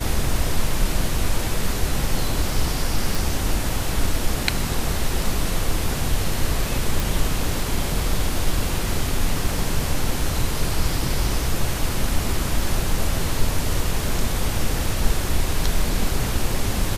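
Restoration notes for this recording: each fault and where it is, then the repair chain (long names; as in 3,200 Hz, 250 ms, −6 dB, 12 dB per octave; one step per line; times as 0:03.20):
0:03.15: click
0:07.00: click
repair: click removal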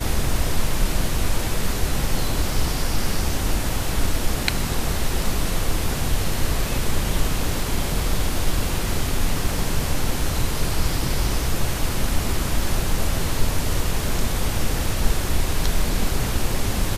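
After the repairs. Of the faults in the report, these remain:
none of them is left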